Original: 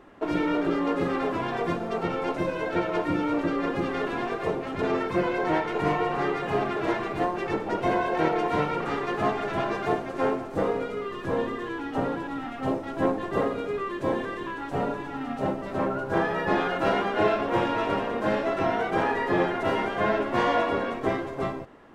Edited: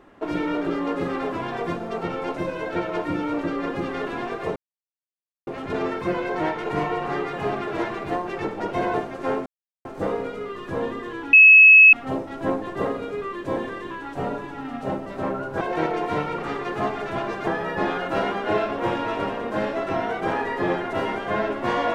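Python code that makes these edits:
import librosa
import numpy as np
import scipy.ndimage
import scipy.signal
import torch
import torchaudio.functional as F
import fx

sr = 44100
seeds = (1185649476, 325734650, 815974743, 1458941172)

y = fx.edit(x, sr, fx.insert_silence(at_s=4.56, length_s=0.91),
    fx.move(start_s=8.03, length_s=1.86, to_s=16.17),
    fx.insert_silence(at_s=10.41, length_s=0.39),
    fx.bleep(start_s=11.89, length_s=0.6, hz=2580.0, db=-6.5), tone=tone)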